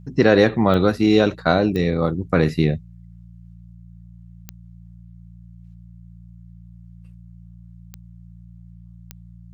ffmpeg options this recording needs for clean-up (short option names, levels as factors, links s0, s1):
-af "adeclick=t=4,bandreject=f=57.7:t=h:w=4,bandreject=f=115.4:t=h:w=4,bandreject=f=173.1:t=h:w=4"